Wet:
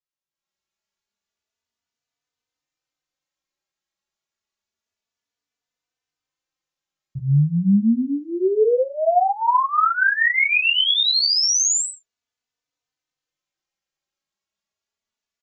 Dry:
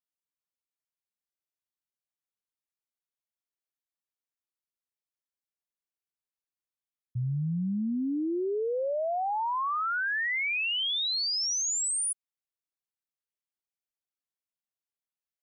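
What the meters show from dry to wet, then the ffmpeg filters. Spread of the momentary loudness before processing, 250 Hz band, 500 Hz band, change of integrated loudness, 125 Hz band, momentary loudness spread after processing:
5 LU, +10.5 dB, +10.5 dB, +10.5 dB, +11.5 dB, 7 LU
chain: -filter_complex "[0:a]bandreject=f=60:t=h:w=6,bandreject=f=120:t=h:w=6,bandreject=f=180:t=h:w=6,bandreject=f=240:t=h:w=6,bandreject=f=300:t=h:w=6,bandreject=f=360:t=h:w=6,bandreject=f=420:t=h:w=6,aresample=16000,aresample=44100,asplit=2[a][b];[b]aecho=0:1:21|35:0.596|0.596[c];[a][c]amix=inputs=2:normalize=0,dynaudnorm=f=280:g=3:m=11.5dB,asplit=2[d][e];[e]adelay=3.3,afreqshift=0.29[f];[d][f]amix=inputs=2:normalize=1"

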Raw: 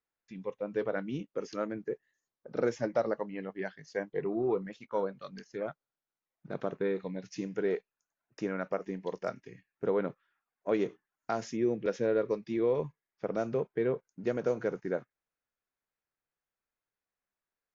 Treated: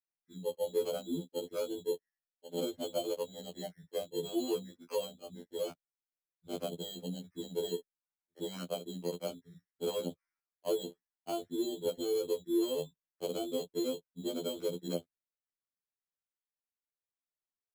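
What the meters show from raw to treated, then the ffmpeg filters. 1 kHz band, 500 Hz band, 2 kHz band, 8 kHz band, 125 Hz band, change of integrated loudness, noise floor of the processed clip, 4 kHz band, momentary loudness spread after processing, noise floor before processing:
-6.5 dB, -4.0 dB, -15.0 dB, n/a, -5.5 dB, -3.5 dB, under -85 dBFS, +11.5 dB, 9 LU, under -85 dBFS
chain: -filter_complex "[0:a]afwtdn=0.0126,acrossover=split=140|1100[a][b][c];[c]alimiter=level_in=15dB:limit=-24dB:level=0:latency=1:release=256,volume=-15dB[d];[a][b][d]amix=inputs=3:normalize=0,acrossover=split=190|580[e][f][g];[e]acompressor=threshold=-46dB:ratio=4[h];[f]acompressor=threshold=-34dB:ratio=4[i];[g]acompressor=threshold=-47dB:ratio=4[j];[h][i][j]amix=inputs=3:normalize=0,asuperstop=centerf=5400:order=12:qfactor=0.6,acrusher=samples=12:mix=1:aa=0.000001,afftfilt=real='re*2*eq(mod(b,4),0)':imag='im*2*eq(mod(b,4),0)':win_size=2048:overlap=0.75,volume=3.5dB"

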